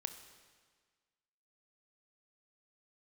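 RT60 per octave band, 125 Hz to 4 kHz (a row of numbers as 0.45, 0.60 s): 1.6, 1.6, 1.5, 1.6, 1.6, 1.5 s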